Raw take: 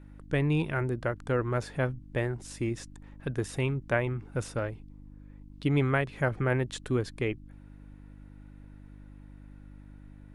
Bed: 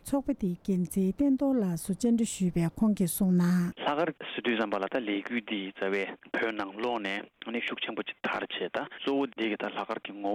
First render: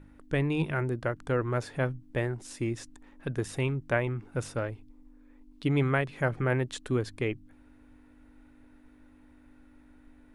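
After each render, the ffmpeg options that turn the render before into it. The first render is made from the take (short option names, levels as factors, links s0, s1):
-af "bandreject=f=50:t=h:w=4,bandreject=f=100:t=h:w=4,bandreject=f=150:t=h:w=4,bandreject=f=200:t=h:w=4"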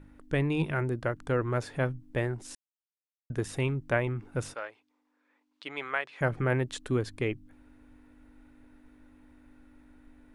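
-filter_complex "[0:a]asettb=1/sr,asplit=3[s0][s1][s2];[s0]atrim=end=4.544[s3];[s1]atrim=start=4.54:end=6.21,asetpts=PTS-STARTPTS,afade=t=in:d=0.004:c=qsin,afade=t=out:st=1.666:d=0.004:c=qsin,highpass=790,lowpass=6100[s4];[s2]atrim=start=6.206[s5];[s3][s4]acrossfade=d=0.004:c1=hsin:c2=qsin[s6];[s6][s5]acrossfade=d=0.004:c1=qsin:c2=hsin,asplit=3[s7][s8][s9];[s7]atrim=end=2.55,asetpts=PTS-STARTPTS,afade=t=out:st=2.546:d=0.004:c=hsin[s10];[s8]atrim=start=2.55:end=3.3,asetpts=PTS-STARTPTS,volume=0[s11];[s9]atrim=start=3.3,asetpts=PTS-STARTPTS,afade=t=in:d=0.004:c=hsin[s12];[s10][s11][s12]concat=n=3:v=0:a=1"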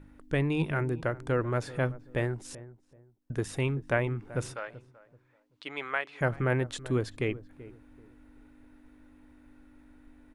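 -filter_complex "[0:a]asplit=2[s0][s1];[s1]adelay=383,lowpass=f=950:p=1,volume=0.15,asplit=2[s2][s3];[s3]adelay=383,lowpass=f=950:p=1,volume=0.29,asplit=2[s4][s5];[s5]adelay=383,lowpass=f=950:p=1,volume=0.29[s6];[s0][s2][s4][s6]amix=inputs=4:normalize=0"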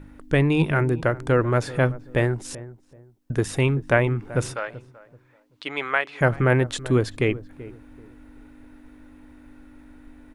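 -af "volume=2.66"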